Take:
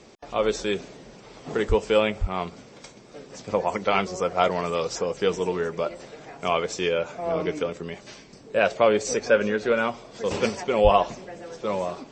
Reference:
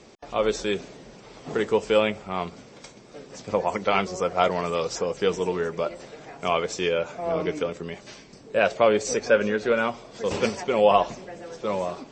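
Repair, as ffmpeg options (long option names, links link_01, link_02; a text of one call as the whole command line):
ffmpeg -i in.wav -filter_complex "[0:a]asplit=3[link_01][link_02][link_03];[link_01]afade=type=out:start_time=1.68:duration=0.02[link_04];[link_02]highpass=frequency=140:width=0.5412,highpass=frequency=140:width=1.3066,afade=type=in:start_time=1.68:duration=0.02,afade=type=out:start_time=1.8:duration=0.02[link_05];[link_03]afade=type=in:start_time=1.8:duration=0.02[link_06];[link_04][link_05][link_06]amix=inputs=3:normalize=0,asplit=3[link_07][link_08][link_09];[link_07]afade=type=out:start_time=2.2:duration=0.02[link_10];[link_08]highpass=frequency=140:width=0.5412,highpass=frequency=140:width=1.3066,afade=type=in:start_time=2.2:duration=0.02,afade=type=out:start_time=2.32:duration=0.02[link_11];[link_09]afade=type=in:start_time=2.32:duration=0.02[link_12];[link_10][link_11][link_12]amix=inputs=3:normalize=0,asplit=3[link_13][link_14][link_15];[link_13]afade=type=out:start_time=10.83:duration=0.02[link_16];[link_14]highpass=frequency=140:width=0.5412,highpass=frequency=140:width=1.3066,afade=type=in:start_time=10.83:duration=0.02,afade=type=out:start_time=10.95:duration=0.02[link_17];[link_15]afade=type=in:start_time=10.95:duration=0.02[link_18];[link_16][link_17][link_18]amix=inputs=3:normalize=0" out.wav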